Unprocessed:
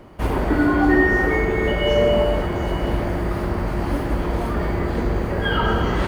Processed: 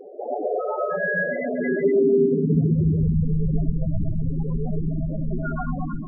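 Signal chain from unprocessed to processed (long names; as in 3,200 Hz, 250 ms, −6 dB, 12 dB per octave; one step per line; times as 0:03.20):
fade-out on the ending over 0.60 s
high-shelf EQ 2,200 Hz −3.5 dB
in parallel at −1.5 dB: compressor whose output falls as the input rises −23 dBFS, ratio −0.5
on the sum: soft clipping −20.5 dBFS, distortion −9 dB
high-pass filter sweep 670 Hz → 69 Hz, 0:01.42–0:05.16
single-sideband voice off tune −190 Hz 180–3,300 Hz
0:04.16–0:05.17: high-frequency loss of the air 100 metres
echo with a time of its own for lows and highs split 560 Hz, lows 132 ms, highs 228 ms, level −6.5 dB
on a send at −4.5 dB: convolution reverb, pre-delay 55 ms
on the sum: spectral peaks only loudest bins 8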